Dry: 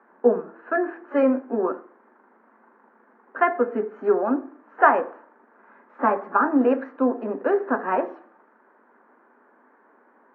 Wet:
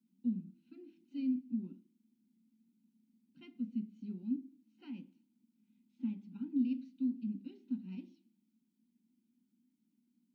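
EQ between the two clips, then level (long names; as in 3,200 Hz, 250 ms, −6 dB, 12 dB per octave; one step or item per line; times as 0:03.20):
inverse Chebyshev band-stop filter 420–1,800 Hz, stop band 50 dB
+1.0 dB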